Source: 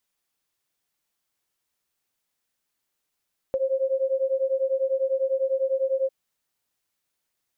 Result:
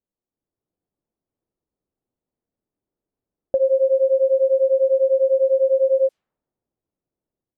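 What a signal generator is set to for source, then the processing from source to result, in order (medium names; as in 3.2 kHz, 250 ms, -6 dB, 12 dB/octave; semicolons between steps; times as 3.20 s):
beating tones 528 Hz, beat 10 Hz, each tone -24.5 dBFS 2.55 s
level-controlled noise filter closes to 470 Hz, open at -21.5 dBFS; peaking EQ 340 Hz +2.5 dB 1.5 oct; level rider gain up to 6 dB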